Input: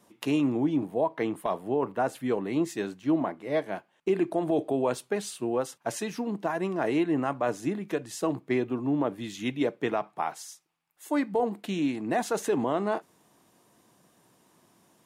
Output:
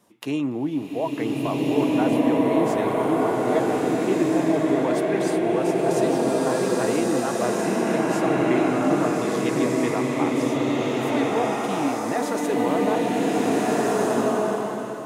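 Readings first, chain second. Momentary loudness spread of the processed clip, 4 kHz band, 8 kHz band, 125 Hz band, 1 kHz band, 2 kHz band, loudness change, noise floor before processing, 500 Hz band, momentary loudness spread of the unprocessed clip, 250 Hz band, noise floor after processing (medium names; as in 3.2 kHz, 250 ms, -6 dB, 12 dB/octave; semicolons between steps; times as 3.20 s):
5 LU, +7.5 dB, +7.5 dB, +7.5 dB, +8.0 dB, +7.5 dB, +7.0 dB, -68 dBFS, +7.5 dB, 6 LU, +7.5 dB, -30 dBFS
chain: swelling reverb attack 1670 ms, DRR -7 dB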